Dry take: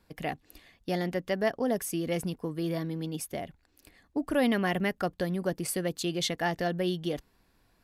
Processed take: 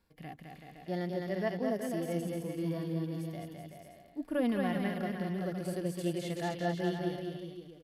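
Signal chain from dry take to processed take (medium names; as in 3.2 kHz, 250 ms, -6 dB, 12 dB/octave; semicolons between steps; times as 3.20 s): bouncing-ball echo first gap 210 ms, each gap 0.8×, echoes 5; harmonic-percussive split percussive -18 dB; trim -4 dB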